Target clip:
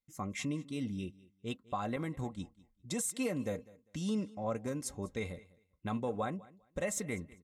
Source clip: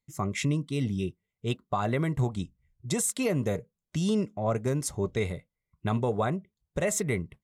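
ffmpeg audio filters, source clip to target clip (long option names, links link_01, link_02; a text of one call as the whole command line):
ffmpeg -i in.wav -filter_complex "[0:a]asettb=1/sr,asplit=3[link_01][link_02][link_03];[link_01]atrim=end=1.964[link_04];[link_02]atrim=start=1.96:end=2.4,asetpts=PTS-STARTPTS,afade=type=in:duration=0.004:curve=qsin,afade=type=out:start_time=0.436:duration=0.004:curve=qsin,agate=range=-33dB:threshold=-29dB:ratio=3:detection=peak[link_05];[link_03]atrim=start=2.396[link_06];[link_04][link_05]acrossfade=duration=0.004:curve1=hsin:curve2=qsin[link_07];[link_07][link_06]acrossfade=duration=0.004:curve1=qsin:curve2=hsin,aecho=1:1:3.8:0.5,aecho=1:1:200|400:0.0841|0.016,volume=-8.5dB" out.wav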